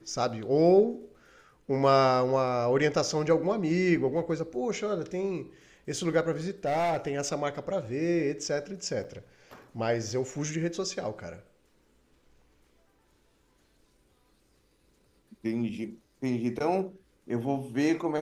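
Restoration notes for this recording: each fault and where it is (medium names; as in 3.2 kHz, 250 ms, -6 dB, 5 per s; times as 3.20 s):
6.65–7.08 s: clipped -24 dBFS
9.04–9.05 s: dropout 6.5 ms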